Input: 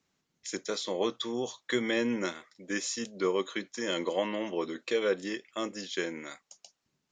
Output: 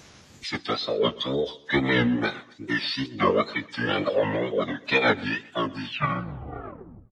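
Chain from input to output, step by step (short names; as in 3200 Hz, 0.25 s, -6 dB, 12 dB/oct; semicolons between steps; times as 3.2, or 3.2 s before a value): tape stop at the end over 1.45 s; upward compressor, threshold -37 dBFS; formant-preserving pitch shift -10.5 st; wow and flutter 140 cents; feedback echo 0.127 s, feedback 39%, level -21.5 dB; gain +7.5 dB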